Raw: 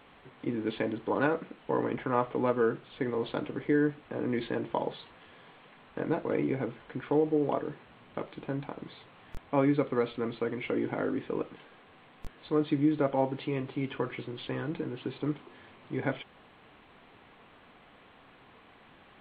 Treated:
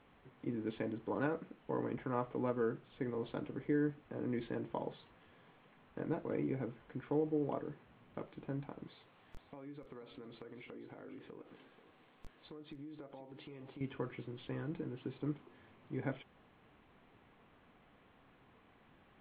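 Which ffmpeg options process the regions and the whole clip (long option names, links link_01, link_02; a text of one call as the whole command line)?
ffmpeg -i in.wav -filter_complex "[0:a]asettb=1/sr,asplit=3[link_01][link_02][link_03];[link_01]atrim=end=8.874[link_04];[link_02]atrim=start=8.87:end=13.81,asetpts=PTS-STARTPTS,afade=type=in:duration=0.004:curve=qsin,afade=type=out:start_time=4.936:duration=0.004:curve=qsin,bass=frequency=250:gain=-6,treble=frequency=4000:gain=9,acompressor=threshold=-39dB:ratio=8:attack=3.2:release=140:knee=1:detection=peak,aecho=1:1:485:0.211,atrim=end_sample=217854[link_05];[link_03]atrim=start=13.806[link_06];[link_04][link_05]acrossfade=duration=0.004:curve1=hsin:curve2=qsin[link_07];[link_07][link_06]acrossfade=duration=0.004:curve1=qsin:curve2=hsin,lowpass=frequency=1500:poles=1,equalizer=frequency=730:width=0.4:gain=-5,volume=-4dB" out.wav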